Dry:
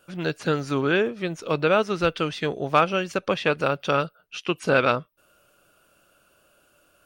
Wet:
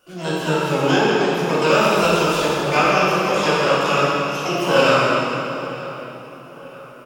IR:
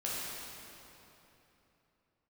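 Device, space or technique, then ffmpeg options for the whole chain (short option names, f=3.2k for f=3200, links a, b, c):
shimmer-style reverb: -filter_complex "[0:a]asettb=1/sr,asplit=3[a][b][c];[a]atrim=end=1.634[d];[b]atrim=start=1.63:end=2.38,asetpts=PTS-STARTPTS,afade=t=in:d=0.004:c=qsin,afade=t=out:st=0.746:d=0.004:c=qsin,aemphasis=mode=production:type=50fm[e];[c]atrim=start=2.376[f];[d][e]acrossfade=d=0.004:c1=hsin:c2=qsin[g];[g][f]acrossfade=d=0.004:c1=qsin:c2=hsin,asplit=2[h][i];[i]asetrate=88200,aresample=44100,atempo=0.5,volume=-4dB[j];[h][j]amix=inputs=2:normalize=0[k];[1:a]atrim=start_sample=2205[l];[k][l]afir=irnorm=-1:irlink=0,asplit=2[m][n];[n]adelay=935,lowpass=f=2.9k:p=1,volume=-17.5dB,asplit=2[o][p];[p]adelay=935,lowpass=f=2.9k:p=1,volume=0.5,asplit=2[q][r];[r]adelay=935,lowpass=f=2.9k:p=1,volume=0.5,asplit=2[s][t];[t]adelay=935,lowpass=f=2.9k:p=1,volume=0.5[u];[m][o][q][s][u]amix=inputs=5:normalize=0"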